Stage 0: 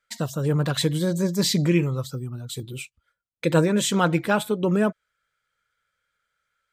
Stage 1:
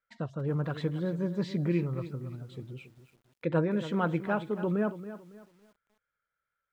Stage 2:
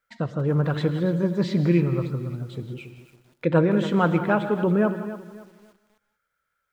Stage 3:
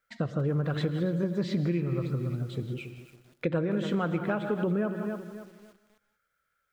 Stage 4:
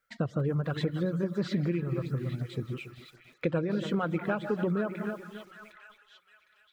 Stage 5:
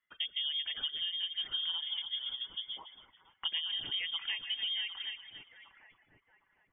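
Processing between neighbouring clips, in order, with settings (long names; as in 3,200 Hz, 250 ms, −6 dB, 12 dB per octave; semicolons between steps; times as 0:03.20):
low-pass filter 1,900 Hz 12 dB per octave; feedback echo at a low word length 278 ms, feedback 35%, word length 8 bits, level −13 dB; level −8 dB
reverb whose tail is shaped and stops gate 210 ms rising, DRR 10.5 dB; level +8 dB
downward compressor 6 to 1, threshold −25 dBFS, peak gain reduction 11 dB; parametric band 930 Hz −7 dB 0.26 octaves
reverb reduction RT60 0.59 s; echo through a band-pass that steps 758 ms, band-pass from 1,600 Hz, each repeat 0.7 octaves, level −7 dB
voice inversion scrambler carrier 3,400 Hz; level −7 dB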